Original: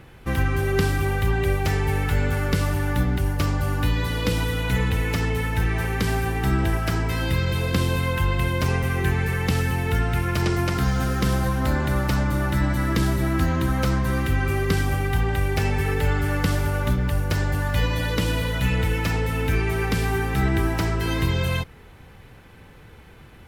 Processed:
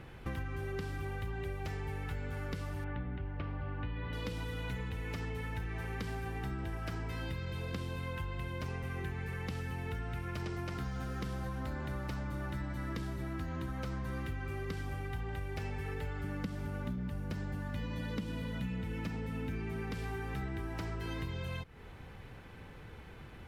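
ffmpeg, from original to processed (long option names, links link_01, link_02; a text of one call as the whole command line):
ffmpeg -i in.wav -filter_complex "[0:a]asettb=1/sr,asplit=3[link_01][link_02][link_03];[link_01]atrim=end=2.844[link_04];[link_02]atrim=start=2.84:end=4.13,asetpts=PTS-STARTPTS,afade=type=in:duration=0.004:curve=qsin,afade=type=out:start_time=1.286:duration=0.004:curve=qsin,lowpass=frequency=3000:width=0.5412,lowpass=frequency=3000:width=1.3066[link_05];[link_03]atrim=start=4.126[link_06];[link_04][link_05]acrossfade=duration=0.004:curve1=hsin:curve2=qsin[link_07];[link_07][link_06]acrossfade=duration=0.004:curve1=qsin:curve2=hsin,asettb=1/sr,asplit=3[link_08][link_09][link_10];[link_08]atrim=end=16.244[link_11];[link_09]atrim=start=16.24:end=19.92,asetpts=PTS-STARTPTS,afade=type=in:duration=0.004:curve=qsin,afade=type=out:start_time=3.676:duration=0.004:curve=qsin,equalizer=frequency=210:width_type=o:width=0.77:gain=13.5[link_12];[link_10]atrim=start=19.916[link_13];[link_11][link_12]acrossfade=duration=0.004:curve1=hsin:curve2=qsin[link_14];[link_14][link_13]acrossfade=duration=0.004:curve1=qsin:curve2=hsin,highshelf=frequency=7000:gain=-8.5,acompressor=threshold=-33dB:ratio=6,volume=-3.5dB" out.wav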